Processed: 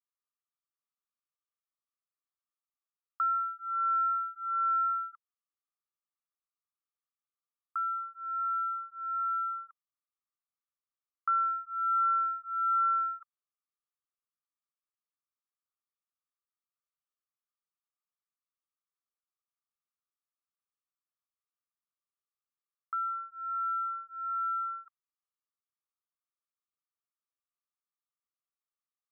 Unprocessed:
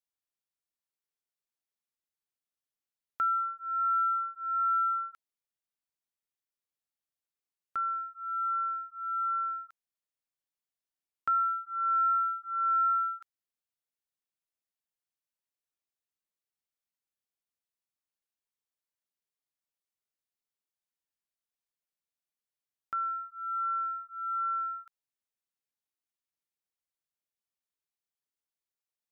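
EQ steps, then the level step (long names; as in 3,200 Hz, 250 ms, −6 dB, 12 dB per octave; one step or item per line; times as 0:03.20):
resonant band-pass 1,200 Hz, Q 10
+7.5 dB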